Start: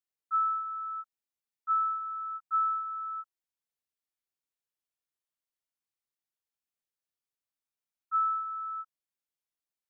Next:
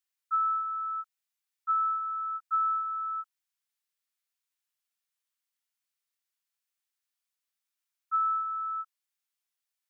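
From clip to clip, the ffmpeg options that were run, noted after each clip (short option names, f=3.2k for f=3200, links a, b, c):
-af "highpass=1.2k,acompressor=threshold=-30dB:ratio=6,volume=5.5dB"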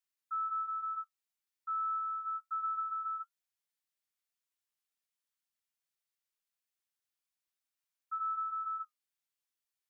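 -af "alimiter=level_in=4dB:limit=-24dB:level=0:latency=1,volume=-4dB,flanger=delay=6.2:depth=6.8:regen=-55:speed=0.26:shape=sinusoidal"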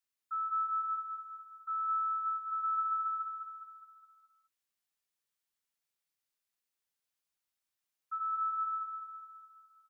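-af "aecho=1:1:207|414|621|828|1035|1242:0.562|0.287|0.146|0.0746|0.038|0.0194"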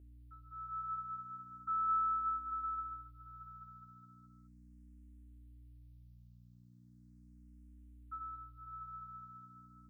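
-filter_complex "[0:a]aeval=exprs='val(0)+0.002*(sin(2*PI*60*n/s)+sin(2*PI*2*60*n/s)/2+sin(2*PI*3*60*n/s)/3+sin(2*PI*4*60*n/s)/4+sin(2*PI*5*60*n/s)/5)':c=same,asplit=2[a][b];[b]afreqshift=0.37[c];[a][c]amix=inputs=2:normalize=1"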